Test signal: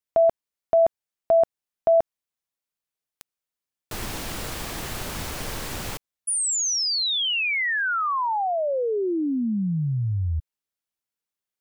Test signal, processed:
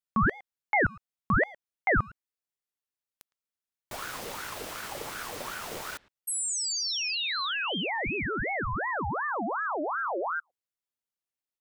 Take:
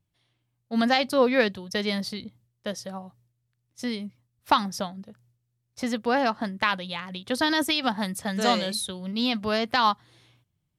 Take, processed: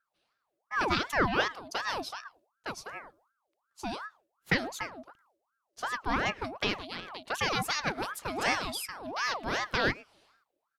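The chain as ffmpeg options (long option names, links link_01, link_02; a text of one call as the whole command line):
ffmpeg -i in.wav -filter_complex "[0:a]asplit=2[link_01][link_02];[link_02]adelay=110,highpass=300,lowpass=3400,asoftclip=type=hard:threshold=-16.5dB,volume=-21dB[link_03];[link_01][link_03]amix=inputs=2:normalize=0,aeval=exprs='val(0)*sin(2*PI*970*n/s+970*0.55/2.7*sin(2*PI*2.7*n/s))':channel_layout=same,volume=-3.5dB" out.wav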